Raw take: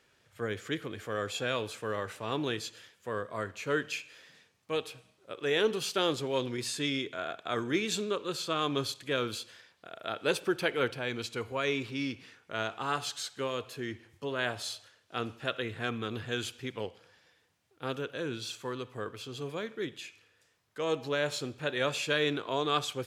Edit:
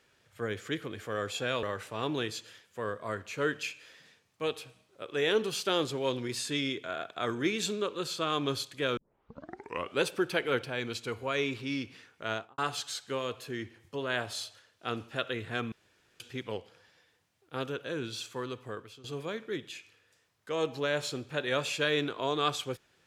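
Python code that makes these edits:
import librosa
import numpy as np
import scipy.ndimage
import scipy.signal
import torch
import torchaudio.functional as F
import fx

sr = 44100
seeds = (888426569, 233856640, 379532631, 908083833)

y = fx.studio_fade_out(x, sr, start_s=12.61, length_s=0.26)
y = fx.edit(y, sr, fx.cut(start_s=1.63, length_s=0.29),
    fx.tape_start(start_s=9.26, length_s=1.05),
    fx.room_tone_fill(start_s=16.01, length_s=0.48),
    fx.fade_out_to(start_s=18.9, length_s=0.43, floor_db=-14.5), tone=tone)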